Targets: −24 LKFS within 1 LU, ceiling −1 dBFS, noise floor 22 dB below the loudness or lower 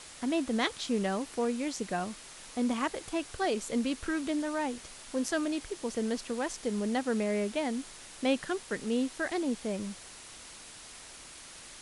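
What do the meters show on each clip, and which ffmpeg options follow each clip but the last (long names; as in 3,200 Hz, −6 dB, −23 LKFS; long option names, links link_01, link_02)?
background noise floor −49 dBFS; target noise floor −55 dBFS; integrated loudness −33.0 LKFS; sample peak −15.5 dBFS; target loudness −24.0 LKFS
→ -af "afftdn=noise_reduction=6:noise_floor=-49"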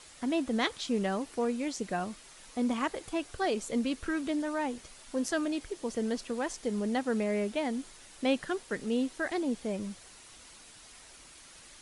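background noise floor −53 dBFS; target noise floor −55 dBFS
→ -af "afftdn=noise_reduction=6:noise_floor=-53"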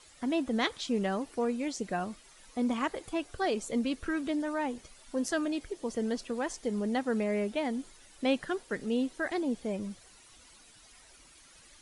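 background noise floor −57 dBFS; integrated loudness −33.0 LKFS; sample peak −15.5 dBFS; target loudness −24.0 LKFS
→ -af "volume=9dB"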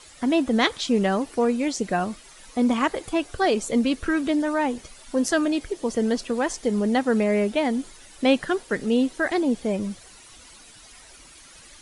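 integrated loudness −24.0 LKFS; sample peak −6.5 dBFS; background noise floor −48 dBFS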